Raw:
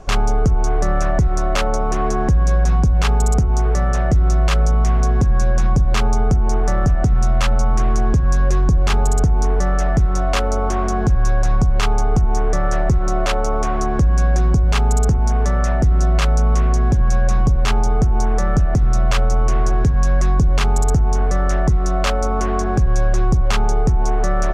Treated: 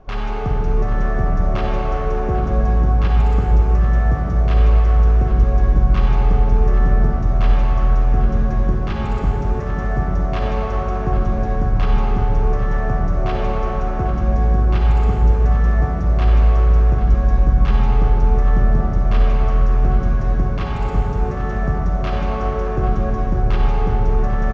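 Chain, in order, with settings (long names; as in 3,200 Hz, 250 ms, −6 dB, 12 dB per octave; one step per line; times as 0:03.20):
noise that follows the level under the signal 33 dB
high-frequency loss of the air 260 metres
single-tap delay 796 ms −15 dB
convolution reverb RT60 5.1 s, pre-delay 33 ms, DRR −4 dB
level −7 dB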